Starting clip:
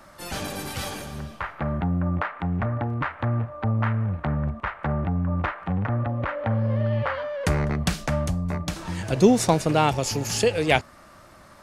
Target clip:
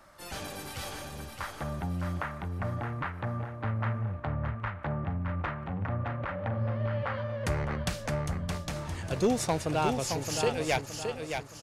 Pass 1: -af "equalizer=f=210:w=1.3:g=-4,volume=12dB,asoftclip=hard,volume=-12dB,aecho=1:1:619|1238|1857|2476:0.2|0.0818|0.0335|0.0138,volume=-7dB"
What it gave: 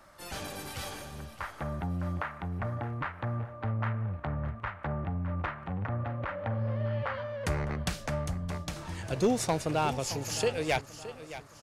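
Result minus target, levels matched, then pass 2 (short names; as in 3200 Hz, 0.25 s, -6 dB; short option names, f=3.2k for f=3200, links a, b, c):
echo-to-direct -8 dB
-af "equalizer=f=210:w=1.3:g=-4,volume=12dB,asoftclip=hard,volume=-12dB,aecho=1:1:619|1238|1857|2476|3095:0.501|0.205|0.0842|0.0345|0.0142,volume=-7dB"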